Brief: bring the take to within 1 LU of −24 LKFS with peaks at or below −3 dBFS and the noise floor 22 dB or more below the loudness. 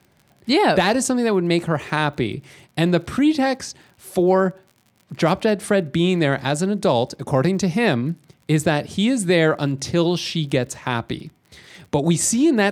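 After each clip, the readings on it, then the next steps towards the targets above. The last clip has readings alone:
crackle rate 47 per second; integrated loudness −20.0 LKFS; sample peak −4.0 dBFS; target loudness −24.0 LKFS
→ click removal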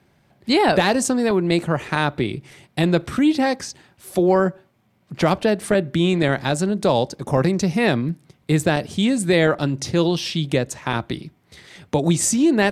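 crackle rate 0 per second; integrated loudness −20.0 LKFS; sample peak −4.0 dBFS; target loudness −24.0 LKFS
→ level −4 dB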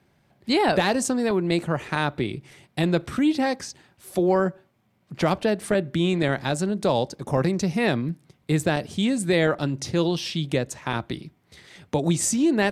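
integrated loudness −24.0 LKFS; sample peak −8.0 dBFS; background noise floor −65 dBFS

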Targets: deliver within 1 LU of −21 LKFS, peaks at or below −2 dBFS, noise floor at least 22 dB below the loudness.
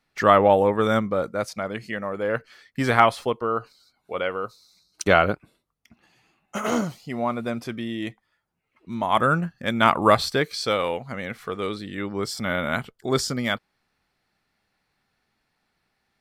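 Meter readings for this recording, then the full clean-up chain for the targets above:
integrated loudness −23.5 LKFS; sample peak −1.5 dBFS; target loudness −21.0 LKFS
→ level +2.5 dB
brickwall limiter −2 dBFS

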